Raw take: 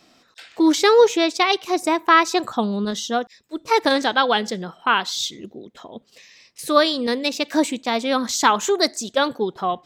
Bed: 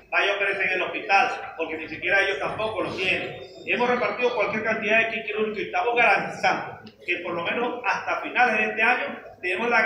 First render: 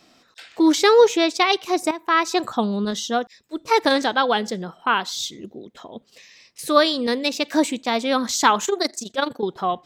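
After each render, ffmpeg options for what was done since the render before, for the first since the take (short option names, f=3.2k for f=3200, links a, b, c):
-filter_complex "[0:a]asettb=1/sr,asplit=3[a][b][c];[a]atrim=end=4.064[d];[b]atrim=start=4.06:end=5.53,asetpts=PTS-STARTPTS,afade=t=in:d=0.004:c=qsin,afade=t=out:st=1.466:d=0.004:c=qsin,equalizer=f=2.9k:w=0.57:g=-3.5[e];[c]atrim=start=5.526[f];[d][e]acrossfade=d=0.004:c1=hsin:c2=qsin[g];[g][f]acrossfade=d=0.004:c1=qsin:c2=hsin,asettb=1/sr,asplit=3[h][i][j];[h]atrim=end=8.654[k];[i]atrim=start=8.65:end=9.43,asetpts=PTS-STARTPTS,afade=t=in:d=0.004:c=qsin,afade=t=out:st=0.776:d=0.004:c=qsin,tremolo=f=24:d=0.75[l];[j]atrim=start=9.426[m];[k][l]acrossfade=d=0.004:c1=hsin:c2=qsin[n];[n][m]acrossfade=d=0.004:c1=qsin:c2=hsin,asplit=2[o][p];[o]atrim=end=1.91,asetpts=PTS-STARTPTS,afade=t=out:st=1.906:d=0.004:c=hsin:silence=0.223872[q];[p]atrim=start=1.91,asetpts=PTS-STARTPTS,afade=t=in:d=0.5:silence=0.223872[r];[q][r]concat=n=2:v=0:a=1"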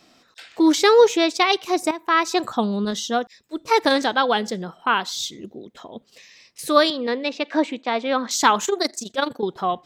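-filter_complex "[0:a]asettb=1/sr,asplit=3[a][b][c];[a]atrim=end=6.904[d];[b]atrim=start=6.9:end=8.31,asetpts=PTS-STARTPTS,afade=t=in:d=0.004:c=qsin,afade=t=out:st=1.406:d=0.004:c=qsin,highpass=270,lowpass=3k[e];[c]atrim=start=8.306[f];[d][e]acrossfade=d=0.004:c1=hsin:c2=qsin[g];[g][f]acrossfade=d=0.004:c1=qsin:c2=hsin"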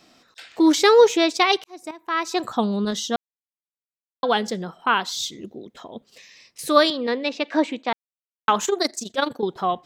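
-filter_complex "[0:a]asplit=6[a][b][c][d][e][f];[a]atrim=end=1.64,asetpts=PTS-STARTPTS,afade=t=out:st=1.636:d=0.004:c=hsin[g];[b]atrim=start=1.64:end=3.16,asetpts=PTS-STARTPTS,afade=t=in:d=0.99,afade=t=out:st=1.516:d=0.004:c=hsin[h];[c]atrim=start=3.16:end=4.23,asetpts=PTS-STARTPTS,volume=0[i];[d]atrim=start=4.23:end=7.93,asetpts=PTS-STARTPTS,afade=t=in:d=0.004:c=hsin,afade=t=out:st=3.696:d=0.004:c=hsin[j];[e]atrim=start=7.93:end=8.48,asetpts=PTS-STARTPTS,volume=0[k];[f]atrim=start=8.48,asetpts=PTS-STARTPTS,afade=t=in:d=0.004:c=hsin[l];[g][h][i][j][k][l]concat=n=6:v=0:a=1"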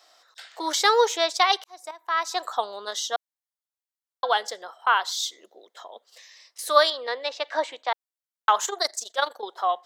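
-af "highpass=f=580:w=0.5412,highpass=f=580:w=1.3066,equalizer=f=2.5k:w=4.6:g=-9.5"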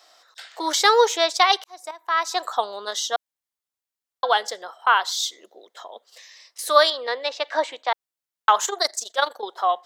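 -af "volume=3dB,alimiter=limit=-2dB:level=0:latency=1"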